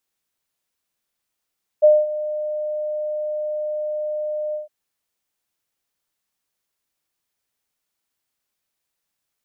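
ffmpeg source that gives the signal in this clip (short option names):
-f lavfi -i "aevalsrc='0.447*sin(2*PI*606*t)':d=2.861:s=44100,afade=t=in:d=0.023,afade=t=out:st=0.023:d=0.218:silence=0.168,afade=t=out:st=2.72:d=0.141"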